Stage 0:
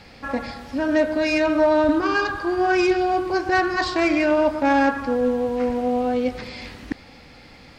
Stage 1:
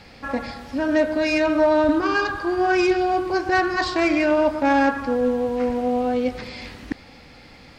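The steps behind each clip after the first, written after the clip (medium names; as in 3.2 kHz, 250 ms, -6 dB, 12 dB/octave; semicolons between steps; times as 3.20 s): no audible change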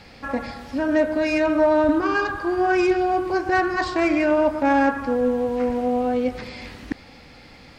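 dynamic bell 4.3 kHz, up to -6 dB, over -41 dBFS, Q 0.97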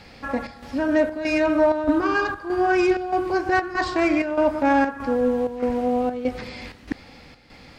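square tremolo 1.6 Hz, depth 60%, duty 75%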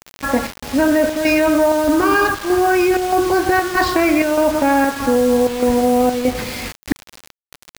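in parallel at 0 dB: compressor with a negative ratio -22 dBFS, ratio -0.5; on the sum: bit crusher 5-bit; trim +1.5 dB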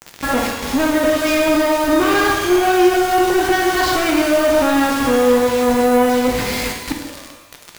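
saturation -19 dBFS, distortion -8 dB; pitch-shifted reverb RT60 1.1 s, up +12 st, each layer -8 dB, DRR 2.5 dB; trim +4 dB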